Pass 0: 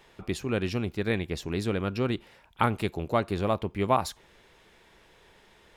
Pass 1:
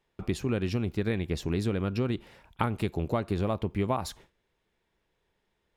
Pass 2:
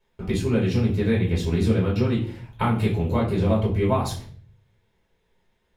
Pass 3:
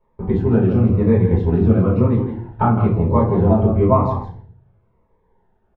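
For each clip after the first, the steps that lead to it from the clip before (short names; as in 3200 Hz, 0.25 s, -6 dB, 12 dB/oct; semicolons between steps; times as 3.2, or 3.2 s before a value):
gate with hold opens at -45 dBFS; low shelf 380 Hz +6 dB; compressor, threshold -24 dBFS, peak gain reduction 8.5 dB
reverb RT60 0.45 s, pre-delay 3 ms, DRR -6 dB; gain -4 dB
synth low-pass 1000 Hz, resonance Q 2; echo 0.162 s -9 dB; cascading phaser falling 1 Hz; gain +6 dB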